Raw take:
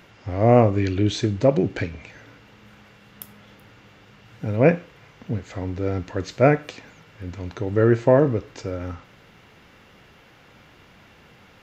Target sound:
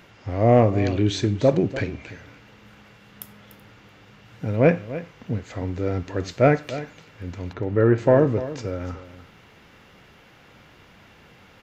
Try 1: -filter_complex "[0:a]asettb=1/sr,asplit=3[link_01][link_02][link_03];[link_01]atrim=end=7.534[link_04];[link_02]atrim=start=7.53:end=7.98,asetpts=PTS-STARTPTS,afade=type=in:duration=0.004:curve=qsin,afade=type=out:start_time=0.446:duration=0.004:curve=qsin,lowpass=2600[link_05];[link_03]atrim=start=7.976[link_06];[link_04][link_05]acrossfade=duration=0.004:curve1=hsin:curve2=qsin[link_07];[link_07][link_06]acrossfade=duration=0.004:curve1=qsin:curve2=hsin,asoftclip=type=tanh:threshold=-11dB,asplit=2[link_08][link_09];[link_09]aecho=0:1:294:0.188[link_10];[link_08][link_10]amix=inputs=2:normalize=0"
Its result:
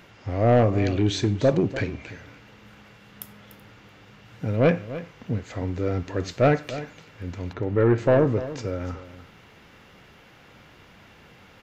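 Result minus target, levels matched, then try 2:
soft clipping: distortion +11 dB
-filter_complex "[0:a]asettb=1/sr,asplit=3[link_01][link_02][link_03];[link_01]atrim=end=7.534[link_04];[link_02]atrim=start=7.53:end=7.98,asetpts=PTS-STARTPTS,afade=type=in:duration=0.004:curve=qsin,afade=type=out:start_time=0.446:duration=0.004:curve=qsin,lowpass=2600[link_05];[link_03]atrim=start=7.976[link_06];[link_04][link_05]acrossfade=duration=0.004:curve1=hsin:curve2=qsin[link_07];[link_07][link_06]acrossfade=duration=0.004:curve1=qsin:curve2=hsin,asoftclip=type=tanh:threshold=-2.5dB,asplit=2[link_08][link_09];[link_09]aecho=0:1:294:0.188[link_10];[link_08][link_10]amix=inputs=2:normalize=0"

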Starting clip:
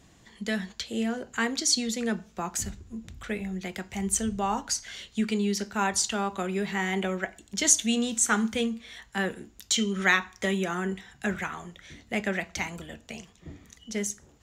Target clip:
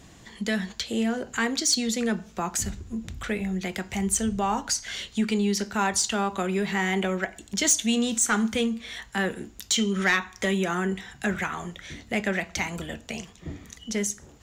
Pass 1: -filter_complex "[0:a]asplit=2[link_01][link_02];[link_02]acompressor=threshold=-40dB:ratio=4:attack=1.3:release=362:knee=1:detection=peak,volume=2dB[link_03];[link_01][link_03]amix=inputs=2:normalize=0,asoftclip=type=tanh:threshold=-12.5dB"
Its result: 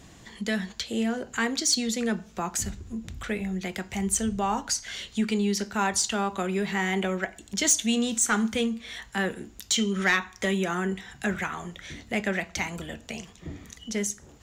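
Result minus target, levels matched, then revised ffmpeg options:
downward compressor: peak gain reduction +5 dB
-filter_complex "[0:a]asplit=2[link_01][link_02];[link_02]acompressor=threshold=-33dB:ratio=4:attack=1.3:release=362:knee=1:detection=peak,volume=2dB[link_03];[link_01][link_03]amix=inputs=2:normalize=0,asoftclip=type=tanh:threshold=-12.5dB"

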